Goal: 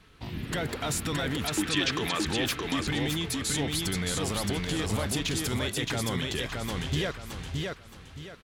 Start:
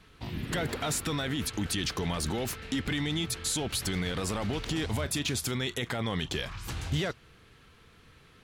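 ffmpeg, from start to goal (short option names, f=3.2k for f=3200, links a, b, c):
-filter_complex "[0:a]asplit=3[a][b][c];[a]afade=t=out:st=1.46:d=0.02[d];[b]highpass=260,equalizer=f=320:t=q:w=4:g=10,equalizer=f=1.2k:t=q:w=4:g=6,equalizer=f=1.7k:t=q:w=4:g=7,equalizer=f=2.5k:t=q:w=4:g=8,equalizer=f=3.6k:t=q:w=4:g=6,lowpass=f=8.1k:w=0.5412,lowpass=f=8.1k:w=1.3066,afade=t=in:st=1.46:d=0.02,afade=t=out:st=2.25:d=0.02[e];[c]afade=t=in:st=2.25:d=0.02[f];[d][e][f]amix=inputs=3:normalize=0,asplit=2[g][h];[h]aecho=0:1:620|1240|1860|2480:0.708|0.219|0.068|0.0211[i];[g][i]amix=inputs=2:normalize=0"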